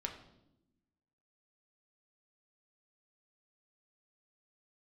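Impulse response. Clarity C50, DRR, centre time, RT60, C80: 9.0 dB, 2.0 dB, 18 ms, 0.85 s, 11.0 dB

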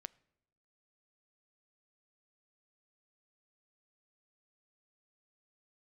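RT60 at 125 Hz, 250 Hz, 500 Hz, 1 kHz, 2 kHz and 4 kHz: 1.0, 1.0, 0.95, 0.80, 0.70, 0.60 seconds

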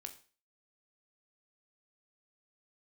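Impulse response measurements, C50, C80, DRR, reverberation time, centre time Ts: 12.5 dB, 17.5 dB, 5.5 dB, 0.40 s, 10 ms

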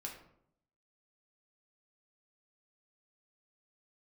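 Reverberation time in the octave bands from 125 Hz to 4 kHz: 0.90, 0.85, 0.75, 0.65, 0.50, 0.40 seconds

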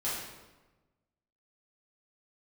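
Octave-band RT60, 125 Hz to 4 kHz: 1.5, 1.4, 1.2, 1.1, 0.95, 0.85 seconds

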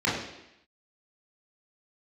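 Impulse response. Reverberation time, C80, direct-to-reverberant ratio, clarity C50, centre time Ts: 0.85 s, 6.0 dB, −7.5 dB, 3.0 dB, 53 ms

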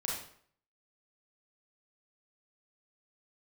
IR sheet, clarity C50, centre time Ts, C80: 1.0 dB, 50 ms, 6.0 dB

